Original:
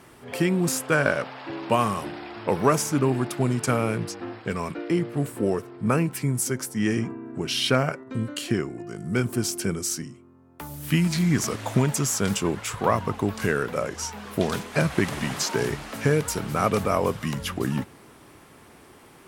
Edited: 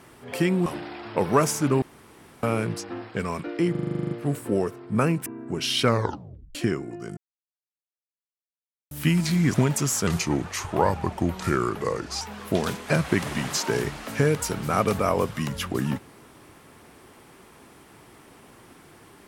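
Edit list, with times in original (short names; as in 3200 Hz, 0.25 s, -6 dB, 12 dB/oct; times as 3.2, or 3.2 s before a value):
0.66–1.97 cut
3.13–3.74 room tone
5.02 stutter 0.04 s, 11 plays
6.17–7.13 cut
7.7 tape stop 0.72 s
9.04–10.78 mute
11.41–11.72 cut
12.25–14.07 speed 85%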